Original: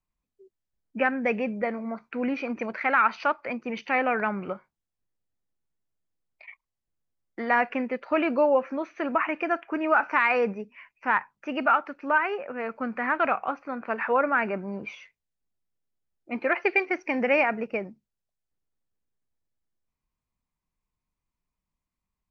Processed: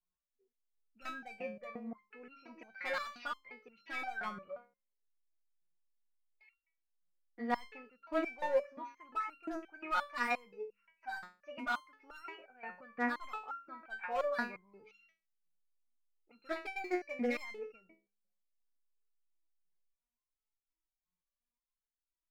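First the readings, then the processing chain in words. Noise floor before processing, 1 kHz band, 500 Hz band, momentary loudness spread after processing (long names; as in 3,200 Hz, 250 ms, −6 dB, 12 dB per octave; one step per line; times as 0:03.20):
below −85 dBFS, −14.0 dB, −13.5 dB, 16 LU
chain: hum removal 68.3 Hz, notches 8
hard clipping −18.5 dBFS, distortion −13 dB
step-sequenced resonator 5.7 Hz 180–1,400 Hz
level +2 dB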